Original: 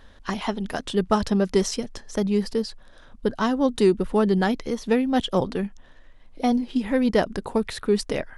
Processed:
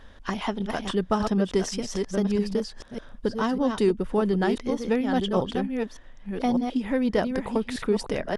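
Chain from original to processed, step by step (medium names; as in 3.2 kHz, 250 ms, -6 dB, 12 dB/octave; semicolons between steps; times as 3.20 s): chunks repeated in reverse 597 ms, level -6 dB; treble shelf 7.6 kHz -5.5 dB; band-stop 4.1 kHz, Q 13; in parallel at +2.5 dB: compression, threshold -29 dBFS, peak gain reduction 15 dB; on the sum: trim -6 dB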